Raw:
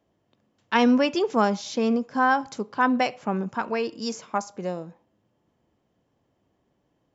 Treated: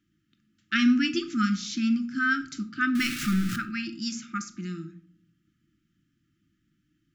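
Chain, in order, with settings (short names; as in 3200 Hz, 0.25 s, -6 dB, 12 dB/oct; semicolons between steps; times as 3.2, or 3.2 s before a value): 2.95–3.56 zero-crossing step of -26 dBFS; brick-wall FIR band-stop 350–1200 Hz; shoebox room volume 590 m³, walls furnished, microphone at 0.8 m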